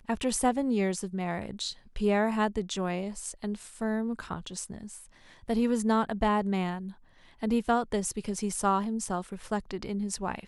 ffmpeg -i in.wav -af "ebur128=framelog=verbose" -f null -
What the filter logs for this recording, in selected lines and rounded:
Integrated loudness:
  I:         -30.3 LUFS
  Threshold: -40.7 LUFS
Loudness range:
  LRA:         3.6 LU
  Threshold: -50.8 LUFS
  LRA low:   -33.0 LUFS
  LRA high:  -29.4 LUFS